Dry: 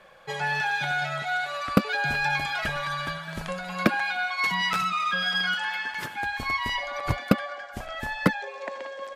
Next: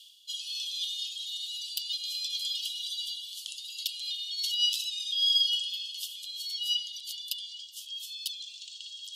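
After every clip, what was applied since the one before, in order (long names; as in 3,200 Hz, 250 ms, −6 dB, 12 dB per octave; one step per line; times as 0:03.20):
Chebyshev high-pass filter 2,900 Hz, order 8
reversed playback
upward compression, threshold −42 dBFS
reversed playback
level +6 dB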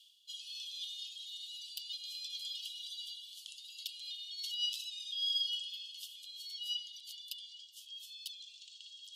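high-shelf EQ 2,400 Hz −7 dB
level −4.5 dB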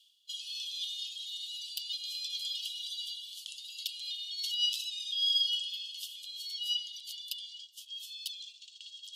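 noise gate −53 dBFS, range −8 dB
level +5.5 dB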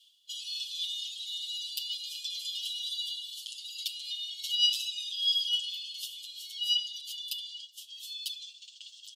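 comb filter 7.2 ms, depth 88%
convolution reverb RT60 0.60 s, pre-delay 7 ms, DRR 11.5 dB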